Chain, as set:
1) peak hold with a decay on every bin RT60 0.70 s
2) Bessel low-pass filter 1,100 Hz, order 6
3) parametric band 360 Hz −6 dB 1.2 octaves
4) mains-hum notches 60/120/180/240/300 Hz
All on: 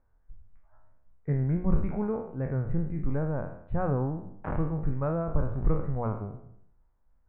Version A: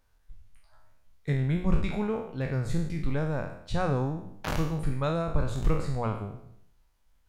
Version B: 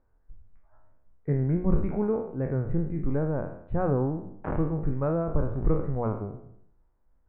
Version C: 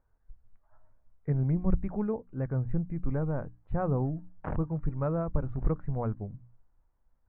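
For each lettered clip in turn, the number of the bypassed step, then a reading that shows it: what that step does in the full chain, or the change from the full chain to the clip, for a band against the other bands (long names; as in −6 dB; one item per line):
2, 2 kHz band +7.5 dB
3, 500 Hz band +3.0 dB
1, 2 kHz band −2.0 dB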